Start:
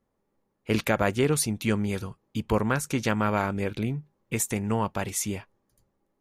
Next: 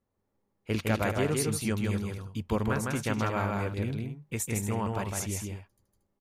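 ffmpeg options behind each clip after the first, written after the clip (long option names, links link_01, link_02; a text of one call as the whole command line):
ffmpeg -i in.wav -filter_complex "[0:a]equalizer=frequency=92:width=3.3:gain=8,asplit=2[link_01][link_02];[link_02]aecho=0:1:158|231:0.708|0.316[link_03];[link_01][link_03]amix=inputs=2:normalize=0,volume=-6dB" out.wav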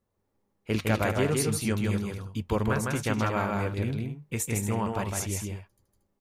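ffmpeg -i in.wav -af "flanger=delay=1.8:depth=6.3:regen=-80:speed=0.36:shape=sinusoidal,volume=6.5dB" out.wav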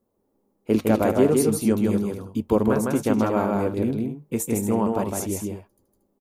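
ffmpeg -i in.wav -af "firequalizer=gain_entry='entry(120,0);entry(240,13);entry(1800,-3);entry(13000,8)':delay=0.05:min_phase=1,volume=-2dB" out.wav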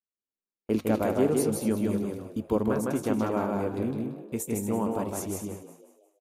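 ffmpeg -i in.wav -filter_complex "[0:a]agate=range=-30dB:threshold=-37dB:ratio=16:detection=peak,asplit=5[link_01][link_02][link_03][link_04][link_05];[link_02]adelay=179,afreqshift=74,volume=-13dB[link_06];[link_03]adelay=358,afreqshift=148,volume=-20.5dB[link_07];[link_04]adelay=537,afreqshift=222,volume=-28.1dB[link_08];[link_05]adelay=716,afreqshift=296,volume=-35.6dB[link_09];[link_01][link_06][link_07][link_08][link_09]amix=inputs=5:normalize=0,volume=-6dB" out.wav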